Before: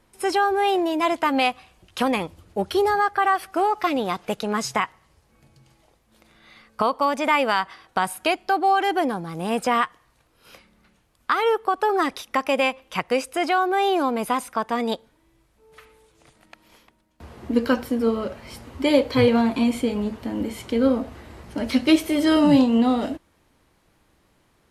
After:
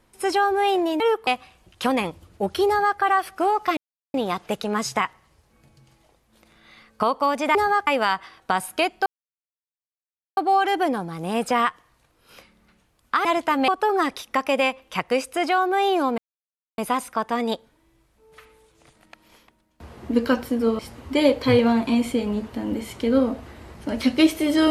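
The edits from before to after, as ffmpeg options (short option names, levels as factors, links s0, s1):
-filter_complex "[0:a]asplit=11[s0][s1][s2][s3][s4][s5][s6][s7][s8][s9][s10];[s0]atrim=end=1.002[s11];[s1]atrim=start=11.408:end=11.682[s12];[s2]atrim=start=1.428:end=3.93,asetpts=PTS-STARTPTS,afade=t=out:st=2.498:d=0.004:c=hsin,apad=pad_dur=0.37[s13];[s3]atrim=start=3.93:end=7.342,asetpts=PTS-STARTPTS,afade=t=in:d=0.004:c=hsin[s14];[s4]atrim=start=2.828:end=3.152[s15];[s5]atrim=start=7.338:end=8.53,asetpts=PTS-STARTPTS,afade=t=out:st=1.188:d=0.004:c=hsin,apad=pad_dur=1.31[s16];[s6]atrim=start=8.53:end=11.412,asetpts=PTS-STARTPTS,afade=t=in:d=0.004:c=hsin[s17];[s7]atrim=start=0.998:end=1.432[s18];[s8]atrim=start=11.678:end=14.18,asetpts=PTS-STARTPTS,afade=t=out:st=2.498:d=0.004:c=hsin,apad=pad_dur=0.6[s19];[s9]atrim=start=14.18:end=18.192,asetpts=PTS-STARTPTS,afade=t=in:d=0.004:c=hsin[s20];[s10]atrim=start=18.478[s21];[s11][s12]acrossfade=d=0.004:c1=hsin:c2=hsin[s22];[s13][s14]concat=n=2:v=0:a=1[s23];[s22][s23]acrossfade=d=0.004:c1=hsin:c2=hsin[s24];[s24][s15]acrossfade=d=0.004:c1=hsin:c2=hsin[s25];[s16][s17]concat=n=2:v=0:a=1[s26];[s25][s26]acrossfade=d=0.004:c1=hsin:c2=hsin[s27];[s27][s18]acrossfade=d=0.004:c1=hsin:c2=hsin[s28];[s19][s20]concat=n=2:v=0:a=1[s29];[s28][s29]acrossfade=d=0.004:c1=hsin:c2=hsin[s30];[s30][s21]acrossfade=d=0.004:c1=hsin:c2=hsin"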